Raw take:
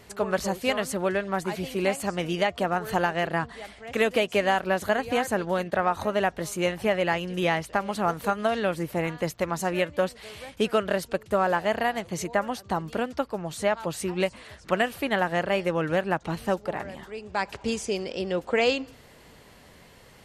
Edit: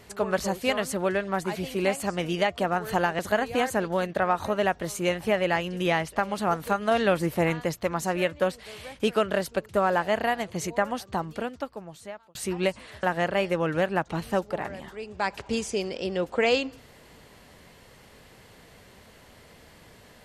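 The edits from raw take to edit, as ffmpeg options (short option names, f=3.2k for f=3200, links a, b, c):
-filter_complex "[0:a]asplit=6[a][b][c][d][e][f];[a]atrim=end=3.192[g];[b]atrim=start=4.758:end=8.482[h];[c]atrim=start=8.478:end=9.192,asetpts=PTS-STARTPTS,volume=3.5dB[i];[d]atrim=start=9.188:end=13.92,asetpts=PTS-STARTPTS,afade=t=out:st=3.362:d=1.37[j];[e]atrim=start=13.92:end=14.602,asetpts=PTS-STARTPTS,afade=t=in:d=0.004:c=hsin[k];[f]atrim=start=15.178[l];[g][h]acrossfade=d=0.004:c1=hsin:c2=hsin[m];[m][i]acrossfade=d=0.004:c1=hsin:c2=hsin[n];[j][k]concat=n=2:v=0:a=1[o];[n][o]acrossfade=d=0.004:c1=hsin:c2=hsin[p];[p][l]acrossfade=d=0.004:c1=hsin:c2=hsin"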